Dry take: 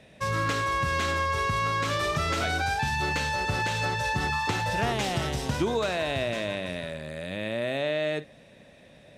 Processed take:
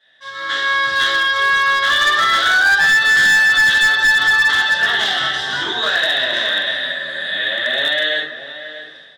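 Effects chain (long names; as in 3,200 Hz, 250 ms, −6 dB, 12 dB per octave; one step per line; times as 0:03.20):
automatic gain control gain up to 16 dB
pair of resonant band-passes 2,400 Hz, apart 1 octave
slap from a distant wall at 110 metres, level −11 dB
rectangular room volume 66 cubic metres, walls mixed, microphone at 2.4 metres
hard clipping −9.5 dBFS, distortion −15 dB
0:06.25–0:06.77: double-tracking delay 44 ms −6 dB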